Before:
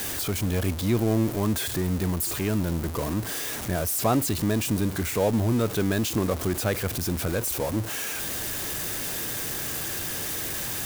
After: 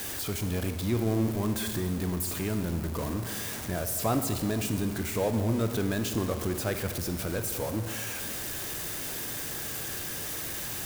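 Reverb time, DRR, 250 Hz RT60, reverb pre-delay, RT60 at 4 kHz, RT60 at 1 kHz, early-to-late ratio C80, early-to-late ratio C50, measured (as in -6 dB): 2.1 s, 7.0 dB, 2.4 s, 28 ms, 1.5 s, 2.0 s, 9.0 dB, 8.0 dB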